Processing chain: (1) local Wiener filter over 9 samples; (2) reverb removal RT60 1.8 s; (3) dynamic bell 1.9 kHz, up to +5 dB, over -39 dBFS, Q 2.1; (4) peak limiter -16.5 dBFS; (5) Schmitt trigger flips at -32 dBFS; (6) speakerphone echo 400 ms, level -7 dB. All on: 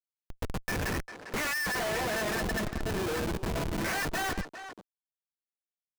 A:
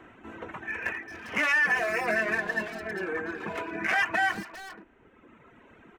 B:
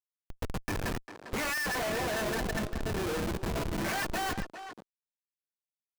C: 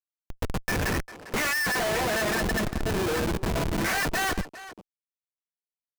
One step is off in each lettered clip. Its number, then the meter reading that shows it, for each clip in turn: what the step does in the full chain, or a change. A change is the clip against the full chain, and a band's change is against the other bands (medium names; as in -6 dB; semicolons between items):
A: 5, crest factor change +5.5 dB; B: 3, loudness change -1.5 LU; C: 4, loudness change +5.0 LU